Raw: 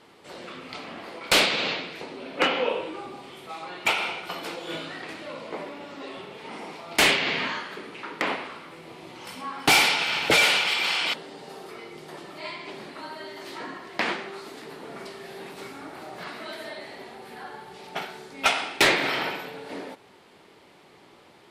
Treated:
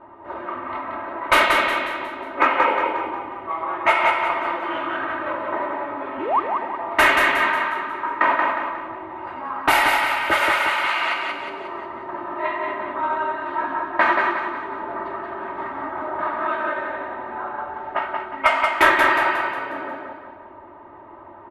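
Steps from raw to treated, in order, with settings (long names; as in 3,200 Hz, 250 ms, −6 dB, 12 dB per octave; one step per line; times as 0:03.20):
comb filter 3.2 ms, depth 83%
formants moved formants −2 semitones
in parallel at −3 dB: downward compressor, threshold −37 dBFS, peak gain reduction 22.5 dB
on the sum: sound drawn into the spectrogram rise, 0:06.18–0:06.40, 230–1,300 Hz −26 dBFS
low-pass that shuts in the quiet parts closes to 790 Hz, open at −16.5 dBFS
dynamic equaliser 4,100 Hz, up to −4 dB, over −34 dBFS, Q 0.81
repeating echo 180 ms, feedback 44%, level −4 dB
speech leveller within 4 dB 2 s
drawn EQ curve 140 Hz 0 dB, 210 Hz −9 dB, 470 Hz −3 dB, 1,100 Hz +9 dB, 4,400 Hz −8 dB, 7,900 Hz −10 dB, 11,000 Hz −1 dB
on a send at −15 dB: convolution reverb, pre-delay 3 ms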